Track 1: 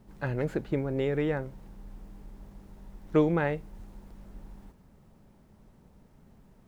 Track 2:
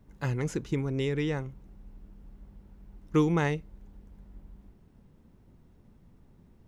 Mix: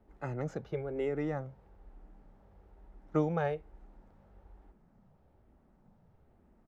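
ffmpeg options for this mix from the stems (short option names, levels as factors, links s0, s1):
-filter_complex "[0:a]bandpass=f=890:t=q:w=1.4:csg=0,equalizer=f=1000:w=4.1:g=-8,volume=0.841[s0];[1:a]highshelf=f=2300:g=-11.5,asplit=2[s1][s2];[s2]afreqshift=-1.1[s3];[s1][s3]amix=inputs=2:normalize=1,adelay=1.6,volume=0.596[s4];[s0][s4]amix=inputs=2:normalize=0"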